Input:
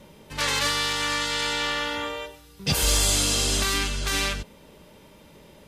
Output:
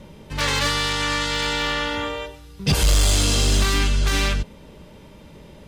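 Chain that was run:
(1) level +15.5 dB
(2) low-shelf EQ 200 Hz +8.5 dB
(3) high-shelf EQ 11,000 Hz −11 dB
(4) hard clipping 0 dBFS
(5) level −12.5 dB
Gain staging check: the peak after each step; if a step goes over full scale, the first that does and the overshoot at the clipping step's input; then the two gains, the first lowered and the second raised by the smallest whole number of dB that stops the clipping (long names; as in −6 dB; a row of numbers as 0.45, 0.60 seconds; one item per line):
+2.5, +8.0, +8.0, 0.0, −12.5 dBFS
step 1, 8.0 dB
step 1 +7.5 dB, step 5 −4.5 dB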